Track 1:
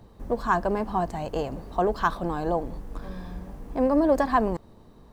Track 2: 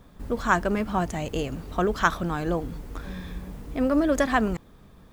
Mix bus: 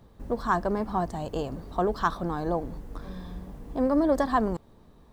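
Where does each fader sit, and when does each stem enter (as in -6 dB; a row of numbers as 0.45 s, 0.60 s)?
-4.5 dB, -11.0 dB; 0.00 s, 0.00 s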